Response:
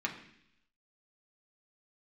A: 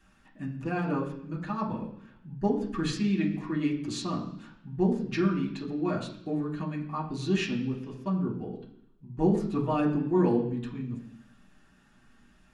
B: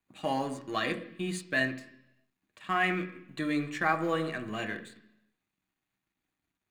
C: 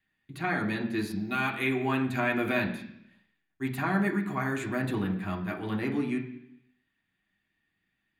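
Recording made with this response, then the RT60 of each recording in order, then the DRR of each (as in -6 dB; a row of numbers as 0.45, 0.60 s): C; 0.70, 0.70, 0.70 s; -5.5, 5.0, -1.0 dB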